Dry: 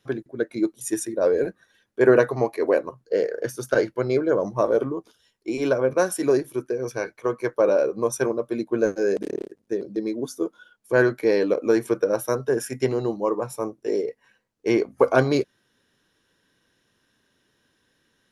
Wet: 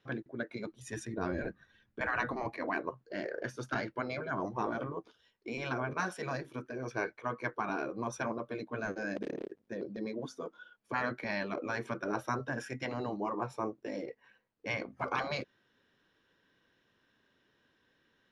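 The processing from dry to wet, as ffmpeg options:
ffmpeg -i in.wav -filter_complex "[0:a]asplit=3[link_01][link_02][link_03];[link_01]afade=type=out:start_time=0.65:duration=0.02[link_04];[link_02]asubboost=boost=10:cutoff=190,afade=type=in:start_time=0.65:duration=0.02,afade=type=out:start_time=2.56:duration=0.02[link_05];[link_03]afade=type=in:start_time=2.56:duration=0.02[link_06];[link_04][link_05][link_06]amix=inputs=3:normalize=0,afftfilt=real='re*lt(hypot(re,im),0.282)':imag='im*lt(hypot(re,im),0.282)':win_size=1024:overlap=0.75,lowpass=3500,lowshelf=frequency=260:gain=-4,volume=-2.5dB" out.wav

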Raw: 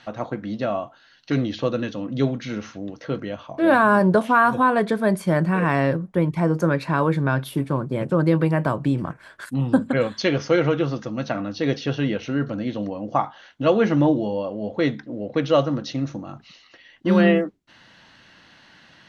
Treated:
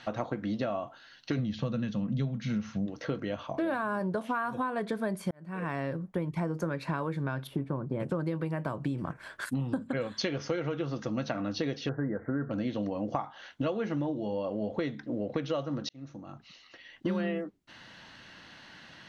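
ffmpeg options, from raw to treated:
ffmpeg -i in.wav -filter_complex "[0:a]asplit=3[link_01][link_02][link_03];[link_01]afade=type=out:start_time=1.38:duration=0.02[link_04];[link_02]lowshelf=frequency=250:width_type=q:width=3:gain=7,afade=type=in:start_time=1.38:duration=0.02,afade=type=out:start_time=2.85:duration=0.02[link_05];[link_03]afade=type=in:start_time=2.85:duration=0.02[link_06];[link_04][link_05][link_06]amix=inputs=3:normalize=0,asettb=1/sr,asplit=3[link_07][link_08][link_09];[link_07]atrim=end=7.474[link_10];[link_08]atrim=start=7.47:end=8,asetpts=PTS-STARTPTS,afade=type=in:duration=0.004:curve=qsin,afade=type=out:start_time=0.526:duration=0.004:curve=qsin,lowpass=frequency=1200:poles=1[link_11];[link_09]atrim=start=7.996[link_12];[link_10][link_11]acrossfade=duration=0.004:curve1=hsin:curve2=qsin[link_13];[link_13][link_12]acrossfade=duration=0.004:curve1=qsin:curve2=hsin,asettb=1/sr,asplit=3[link_14][link_15][link_16];[link_14]atrim=end=11.894[link_17];[link_15]atrim=start=11.89:end=12.51,asetpts=PTS-STARTPTS,afade=type=in:duration=0.004:curve=qsin,afade=type=out:start_time=0.616:duration=0.004:curve=qsin,asuperstop=centerf=4100:order=20:qfactor=0.64[link_18];[link_16]atrim=start=12.506[link_19];[link_17][link_18]acrossfade=duration=0.004:curve1=hsin:curve2=qsin[link_20];[link_20][link_19]acrossfade=duration=0.004:curve1=qsin:curve2=hsin,asplit=3[link_21][link_22][link_23];[link_21]atrim=end=5.31,asetpts=PTS-STARTPTS,afade=type=out:start_time=5.306:duration=0.004:curve=hsin[link_24];[link_22]atrim=start=5.31:end=15.89,asetpts=PTS-STARTPTS,afade=type=in:duration=1.46,afade=type=out:start_time=10.576:duration=0.004:curve=hsin[link_25];[link_23]atrim=start=15.89,asetpts=PTS-STARTPTS,afade=type=in:duration=1.2[link_26];[link_24][link_25][link_26]concat=n=3:v=0:a=1,acompressor=threshold=-28dB:ratio=12" out.wav

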